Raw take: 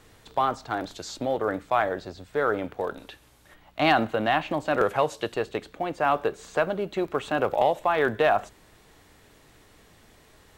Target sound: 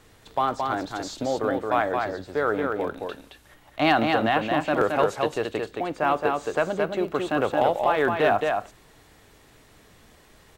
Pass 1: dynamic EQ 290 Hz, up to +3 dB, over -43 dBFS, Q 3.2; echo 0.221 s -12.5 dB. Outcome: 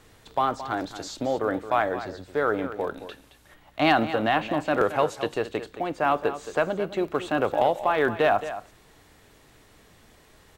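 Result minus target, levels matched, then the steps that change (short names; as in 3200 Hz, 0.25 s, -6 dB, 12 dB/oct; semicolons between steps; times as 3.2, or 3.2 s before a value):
echo-to-direct -8.5 dB
change: echo 0.221 s -4 dB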